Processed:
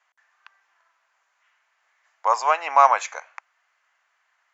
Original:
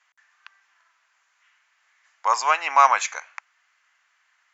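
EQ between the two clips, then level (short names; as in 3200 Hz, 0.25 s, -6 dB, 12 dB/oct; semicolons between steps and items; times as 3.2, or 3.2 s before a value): bell 590 Hz +11.5 dB 1.8 oct; -6.0 dB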